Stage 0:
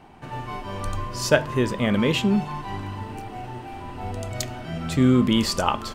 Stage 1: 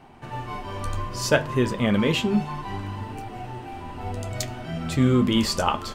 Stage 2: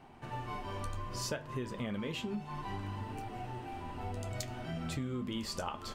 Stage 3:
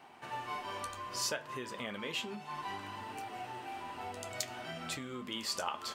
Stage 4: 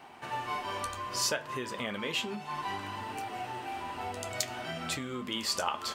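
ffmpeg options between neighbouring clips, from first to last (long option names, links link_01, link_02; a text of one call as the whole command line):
ffmpeg -i in.wav -af "flanger=delay=7.2:depth=6.1:regen=-49:speed=0.63:shape=triangular,volume=3.5dB" out.wav
ffmpeg -i in.wav -af "acompressor=threshold=-28dB:ratio=8,volume=-6.5dB" out.wav
ffmpeg -i in.wav -af "highpass=frequency=890:poles=1,volume=5dB" out.wav
ffmpeg -i in.wav -af "equalizer=frequency=60:width_type=o:width=0.69:gain=8.5,volume=5dB" out.wav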